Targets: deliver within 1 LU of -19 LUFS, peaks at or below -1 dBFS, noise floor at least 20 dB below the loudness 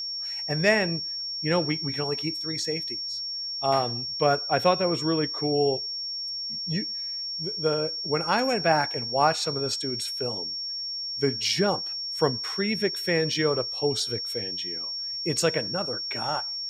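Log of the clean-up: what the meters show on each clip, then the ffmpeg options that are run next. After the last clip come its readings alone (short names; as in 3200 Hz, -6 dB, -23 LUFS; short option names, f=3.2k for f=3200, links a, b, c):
steady tone 5500 Hz; tone level -30 dBFS; loudness -26.0 LUFS; peak -7.0 dBFS; loudness target -19.0 LUFS
-> -af "bandreject=f=5.5k:w=30"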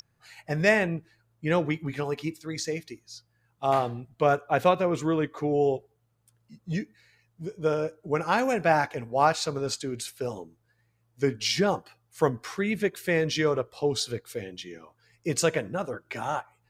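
steady tone none; loudness -27.5 LUFS; peak -7.5 dBFS; loudness target -19.0 LUFS
-> -af "volume=8.5dB,alimiter=limit=-1dB:level=0:latency=1"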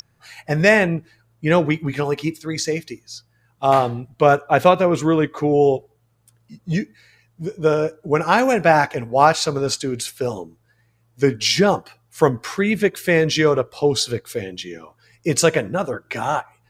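loudness -19.0 LUFS; peak -1.0 dBFS; noise floor -62 dBFS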